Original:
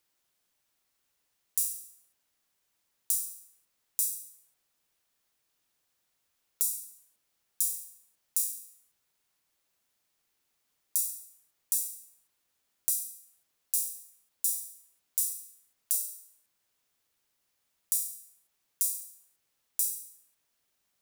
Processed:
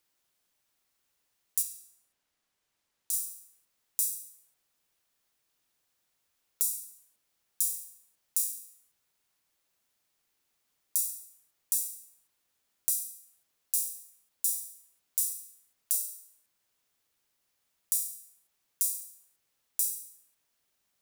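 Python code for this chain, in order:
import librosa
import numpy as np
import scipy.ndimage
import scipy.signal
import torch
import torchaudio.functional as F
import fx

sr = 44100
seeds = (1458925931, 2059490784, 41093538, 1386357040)

y = fx.high_shelf(x, sr, hz=fx.line((1.61, 5600.0), (3.12, 9500.0)), db=-8.5, at=(1.61, 3.12), fade=0.02)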